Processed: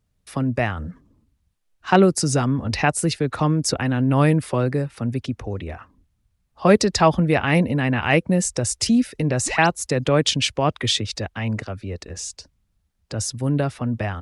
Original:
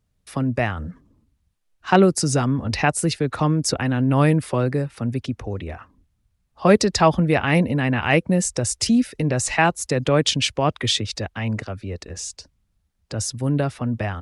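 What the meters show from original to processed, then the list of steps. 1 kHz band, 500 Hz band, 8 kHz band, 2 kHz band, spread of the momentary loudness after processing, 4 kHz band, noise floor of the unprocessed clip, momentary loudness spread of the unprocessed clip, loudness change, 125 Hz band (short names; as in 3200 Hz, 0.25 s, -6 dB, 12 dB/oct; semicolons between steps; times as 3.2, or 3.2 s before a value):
0.0 dB, 0.0 dB, 0.0 dB, 0.0 dB, 15 LU, 0.0 dB, -70 dBFS, 15 LU, 0.0 dB, 0.0 dB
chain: painted sound rise, 9.46–9.67, 230–6400 Hz -32 dBFS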